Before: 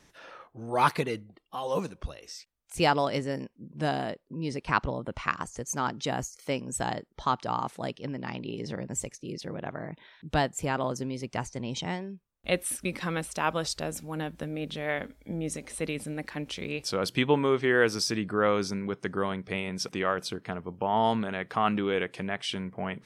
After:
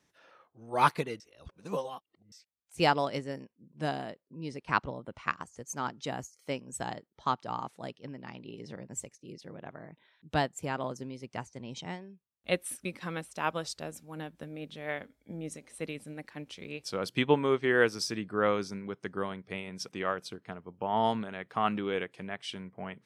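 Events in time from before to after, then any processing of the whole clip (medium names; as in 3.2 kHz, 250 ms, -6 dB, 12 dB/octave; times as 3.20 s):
1.20–2.32 s: reverse
whole clip: high-pass 77 Hz; upward expansion 1.5:1, over -42 dBFS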